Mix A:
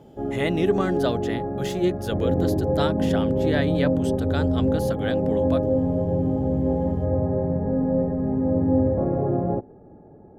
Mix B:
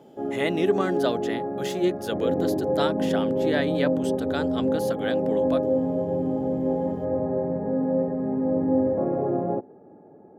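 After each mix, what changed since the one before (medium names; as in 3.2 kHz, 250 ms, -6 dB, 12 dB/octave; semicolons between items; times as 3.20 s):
master: add high-pass 220 Hz 12 dB/octave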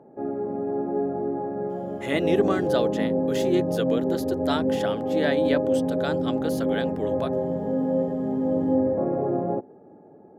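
speech: entry +1.70 s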